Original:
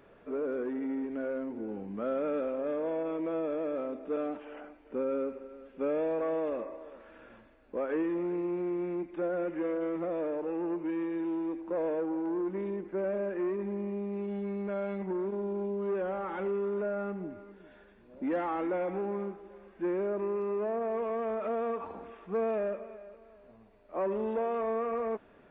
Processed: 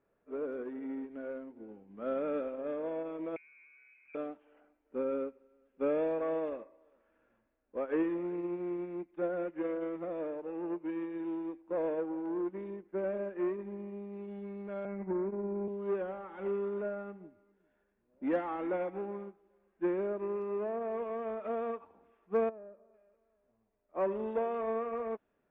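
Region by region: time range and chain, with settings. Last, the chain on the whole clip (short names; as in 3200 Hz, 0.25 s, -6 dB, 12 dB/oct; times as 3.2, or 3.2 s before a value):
3.36–4.15 HPF 69 Hz + compressor 12:1, threshold -38 dBFS + inverted band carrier 2800 Hz
14.85–15.68 steep low-pass 2500 Hz 72 dB/oct + low shelf 210 Hz +5 dB
22.49–22.94 LPF 1200 Hz + compressor 2:1, threshold -39 dBFS
whole clip: low-pass opened by the level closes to 2100 Hz; upward expander 2.5:1, over -42 dBFS; gain +2.5 dB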